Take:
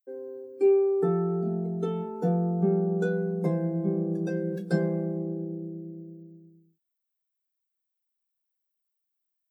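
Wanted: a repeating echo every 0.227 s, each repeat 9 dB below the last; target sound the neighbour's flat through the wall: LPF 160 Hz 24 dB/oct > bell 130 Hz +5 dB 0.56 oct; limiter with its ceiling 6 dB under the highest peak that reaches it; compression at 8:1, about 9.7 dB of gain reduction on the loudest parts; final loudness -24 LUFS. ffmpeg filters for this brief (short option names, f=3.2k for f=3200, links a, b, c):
-af "acompressor=threshold=-28dB:ratio=8,alimiter=level_in=2.5dB:limit=-24dB:level=0:latency=1,volume=-2.5dB,lowpass=f=160:w=0.5412,lowpass=f=160:w=1.3066,equalizer=f=130:t=o:w=0.56:g=5,aecho=1:1:227|454|681|908:0.355|0.124|0.0435|0.0152,volume=18.5dB"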